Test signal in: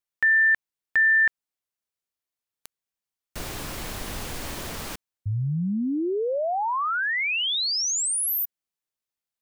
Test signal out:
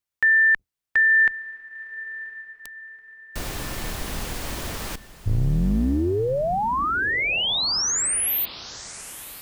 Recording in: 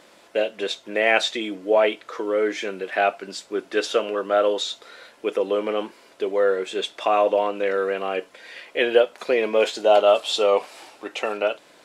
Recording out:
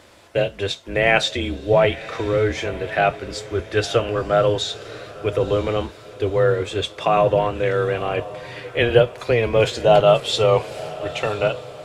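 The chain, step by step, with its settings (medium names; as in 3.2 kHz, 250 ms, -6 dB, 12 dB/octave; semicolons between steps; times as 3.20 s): octave divider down 2 oct, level +1 dB; on a send: echo that smears into a reverb 985 ms, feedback 42%, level -16 dB; on the sum: trim +2 dB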